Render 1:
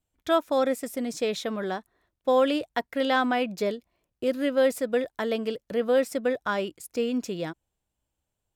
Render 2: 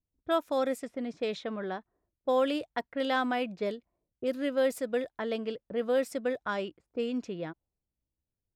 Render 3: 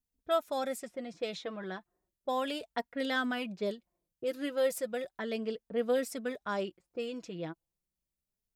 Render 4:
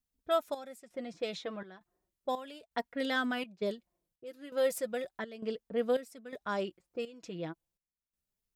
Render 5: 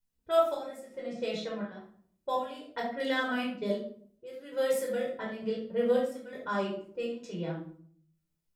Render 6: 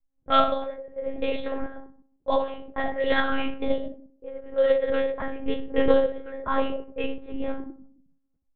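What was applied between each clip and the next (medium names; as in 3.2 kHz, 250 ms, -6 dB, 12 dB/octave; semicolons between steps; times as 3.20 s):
level-controlled noise filter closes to 410 Hz, open at -21.5 dBFS; trim -5 dB
treble shelf 4.6 kHz +8.5 dB; flange 0.34 Hz, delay 4.1 ms, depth 2.2 ms, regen +20%
trance gate "xxx..xxxx." 83 bpm -12 dB
simulated room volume 720 m³, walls furnished, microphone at 4.8 m; trim -4.5 dB
level-controlled noise filter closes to 730 Hz, open at -24 dBFS; monotone LPC vocoder at 8 kHz 270 Hz; trim +8 dB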